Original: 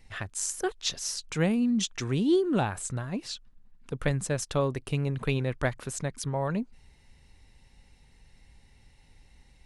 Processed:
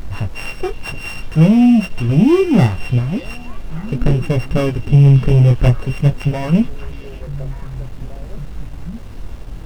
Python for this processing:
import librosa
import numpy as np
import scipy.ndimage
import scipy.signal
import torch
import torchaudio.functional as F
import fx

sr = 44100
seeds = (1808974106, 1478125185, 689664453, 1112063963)

p1 = np.r_[np.sort(x[:len(x) // 16 * 16].reshape(-1, 16), axis=1).ravel(), x[len(x) // 16 * 16:]]
p2 = fx.riaa(p1, sr, side='playback')
p3 = fx.level_steps(p2, sr, step_db=21)
p4 = p2 + (p3 * librosa.db_to_amplitude(1.5))
p5 = fx.dmg_noise_colour(p4, sr, seeds[0], colour='brown', level_db=-36.0)
p6 = fx.leveller(p5, sr, passes=2)
p7 = fx.chorus_voices(p6, sr, voices=2, hz=0.45, base_ms=21, depth_ms=3.9, mix_pct=35)
y = p7 + fx.echo_stepped(p7, sr, ms=586, hz=3500.0, octaves=-1.4, feedback_pct=70, wet_db=-8.5, dry=0)